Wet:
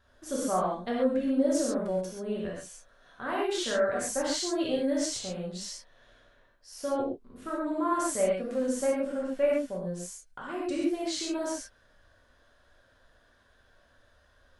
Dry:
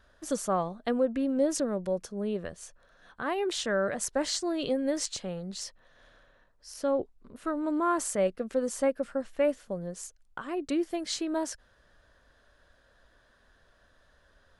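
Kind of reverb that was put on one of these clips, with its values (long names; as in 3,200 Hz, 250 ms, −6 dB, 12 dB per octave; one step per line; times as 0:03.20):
reverb whose tail is shaped and stops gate 160 ms flat, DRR −5.5 dB
level −6 dB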